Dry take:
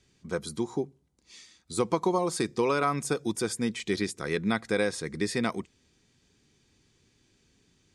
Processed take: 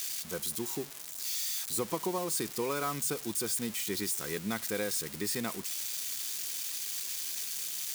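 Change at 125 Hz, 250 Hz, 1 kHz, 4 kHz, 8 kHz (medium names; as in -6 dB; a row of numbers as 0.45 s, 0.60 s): -7.5 dB, -7.5 dB, -7.5 dB, +2.5 dB, +7.0 dB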